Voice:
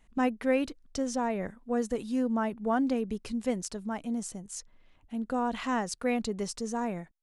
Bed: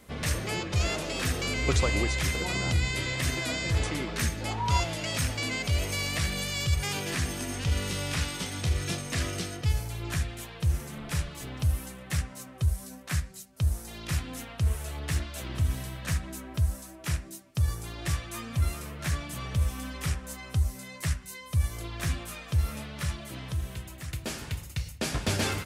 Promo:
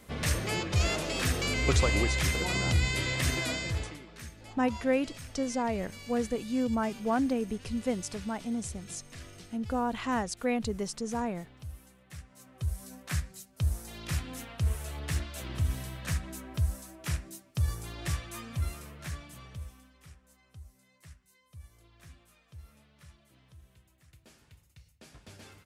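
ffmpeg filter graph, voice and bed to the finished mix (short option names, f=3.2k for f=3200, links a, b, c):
-filter_complex "[0:a]adelay=4400,volume=-0.5dB[a];[1:a]volume=14dB,afade=t=out:st=3.4:d=0.6:silence=0.149624,afade=t=in:st=12.26:d=0.73:silence=0.199526,afade=t=out:st=18.04:d=1.85:silence=0.0944061[b];[a][b]amix=inputs=2:normalize=0"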